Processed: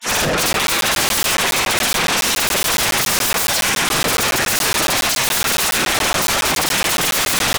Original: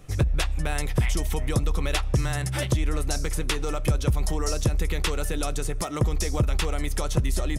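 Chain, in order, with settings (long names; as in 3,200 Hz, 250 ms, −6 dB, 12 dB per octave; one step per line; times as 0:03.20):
granular cloud 100 ms, grains 20 per second
mid-hump overdrive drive 17 dB, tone 2,100 Hz, clips at −14.5 dBFS
in parallel at +2.5 dB: brickwall limiter −22.5 dBFS, peak gain reduction 7.5 dB
on the sum: feedback echo with a high-pass in the loop 234 ms, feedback 79%, high-pass 200 Hz, level −16.5 dB
gate on every frequency bin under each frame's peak −20 dB weak
sine wavefolder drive 19 dB, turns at −16.5 dBFS
ambience of single reflections 47 ms −10.5 dB, 79 ms −12.5 dB
regular buffer underruns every 0.14 s, samples 512, zero, from 0:00.53
level +2 dB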